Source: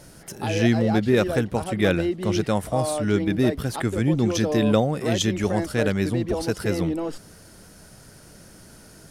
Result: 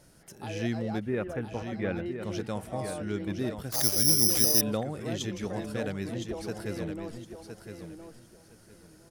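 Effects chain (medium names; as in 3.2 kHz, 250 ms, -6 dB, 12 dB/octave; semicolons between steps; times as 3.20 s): 1.01–2.06 s: low-pass 2.6 kHz 24 dB/octave; feedback delay 1014 ms, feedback 21%, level -8 dB; 3.72–4.61 s: careless resampling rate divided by 8×, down none, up zero stuff; trim -11.5 dB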